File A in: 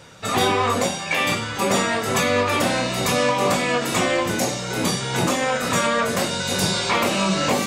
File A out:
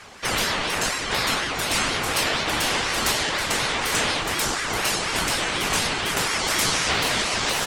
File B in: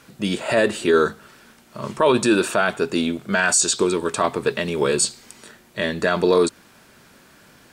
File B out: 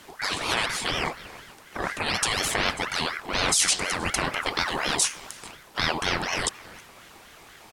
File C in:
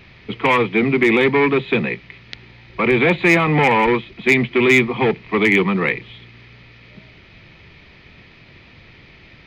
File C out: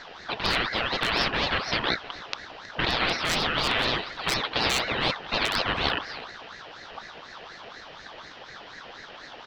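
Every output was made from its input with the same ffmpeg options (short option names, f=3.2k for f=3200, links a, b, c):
-filter_complex "[0:a]afftfilt=real='re*lt(hypot(re,im),0.282)':imag='im*lt(hypot(re,im),0.282)':win_size=1024:overlap=0.75,asplit=2[a][b];[b]adelay=318,lowpass=f=2.3k:p=1,volume=-17dB,asplit=2[c][d];[d]adelay=318,lowpass=f=2.3k:p=1,volume=0.26[e];[a][c][e]amix=inputs=3:normalize=0,aeval=exprs='val(0)*sin(2*PI*1200*n/s+1200*0.55/4.1*sin(2*PI*4.1*n/s))':c=same,volume=4.5dB"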